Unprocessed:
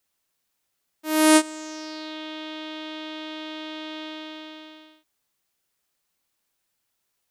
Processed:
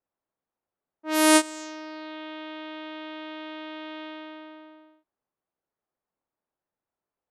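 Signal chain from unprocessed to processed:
low-shelf EQ 240 Hz −8 dB
low-pass that shuts in the quiet parts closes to 870 Hz, open at −22.5 dBFS

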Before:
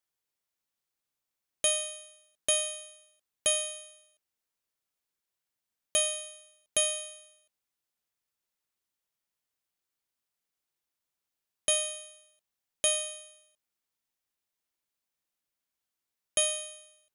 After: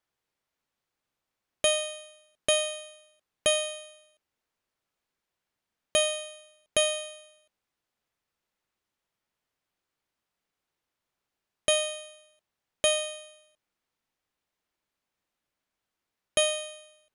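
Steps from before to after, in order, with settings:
low-pass filter 2,300 Hz 6 dB per octave
level +8.5 dB

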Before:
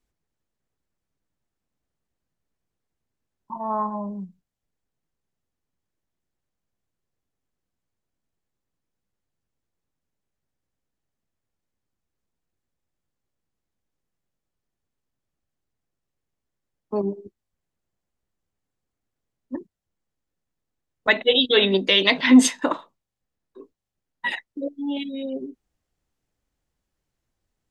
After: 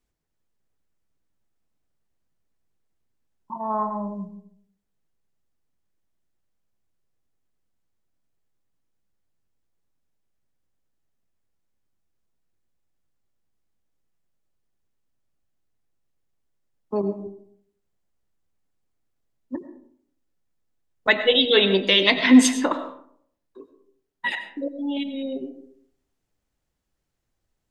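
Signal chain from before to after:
comb and all-pass reverb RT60 0.63 s, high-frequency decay 0.45×, pre-delay 60 ms, DRR 10 dB

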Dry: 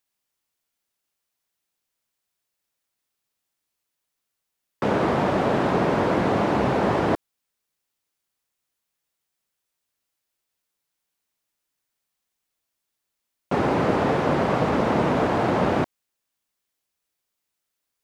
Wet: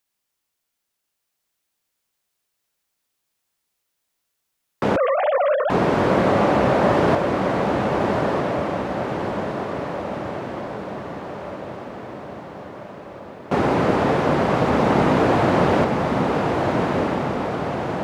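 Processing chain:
0:04.96–0:05.70: three sine waves on the formant tracks
feedback delay with all-pass diffusion 1,295 ms, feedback 61%, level −3 dB
level +2.5 dB

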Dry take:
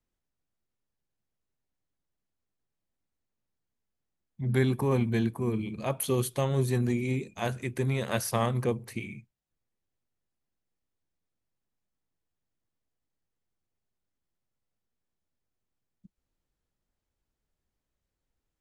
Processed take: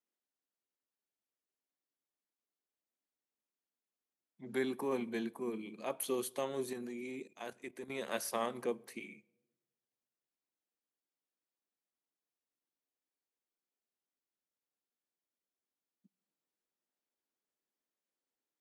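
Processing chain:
high-pass filter 240 Hz 24 dB per octave
on a send at −23 dB: convolution reverb RT60 1.1 s, pre-delay 10 ms
0:06.73–0:07.90: on the sum: output level in coarse steps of 12 dB
level −7 dB

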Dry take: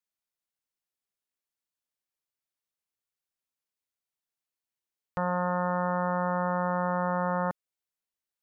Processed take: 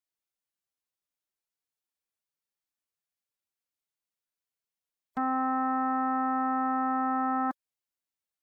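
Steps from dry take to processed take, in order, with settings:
phase-vocoder pitch shift with formants kept +6.5 semitones

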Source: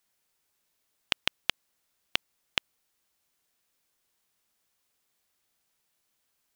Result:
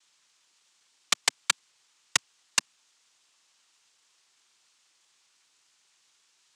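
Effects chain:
high-shelf EQ 2,400 Hz +8 dB
cochlear-implant simulation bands 4

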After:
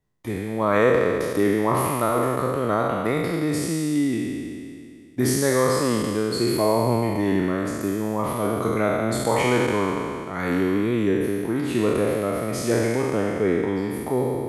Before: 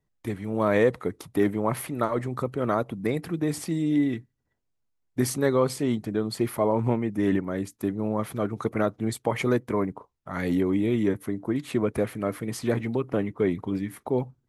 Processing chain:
peak hold with a decay on every bin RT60 2.35 s

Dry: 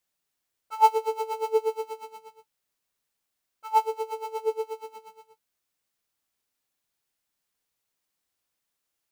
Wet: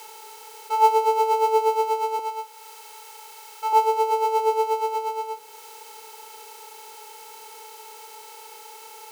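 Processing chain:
compressor on every frequency bin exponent 0.4
0:02.19–0:03.73: high-pass filter 530 Hz 12 dB per octave
one half of a high-frequency compander encoder only

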